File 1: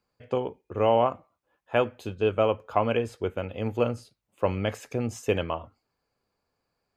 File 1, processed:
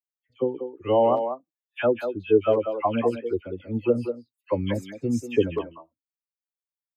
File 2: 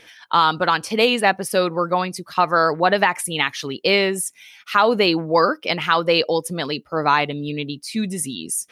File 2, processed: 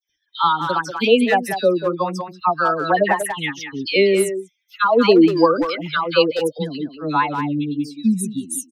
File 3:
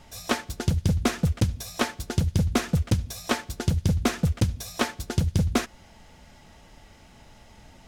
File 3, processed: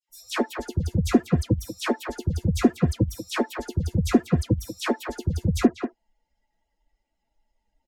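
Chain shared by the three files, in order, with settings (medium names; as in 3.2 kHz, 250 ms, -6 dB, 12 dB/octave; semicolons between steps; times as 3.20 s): expander on every frequency bin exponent 2; peaking EQ 310 Hz +10.5 dB 1.3 oct; phase dispersion lows, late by 96 ms, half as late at 1.7 kHz; speakerphone echo 190 ms, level -7 dB; trim +1 dB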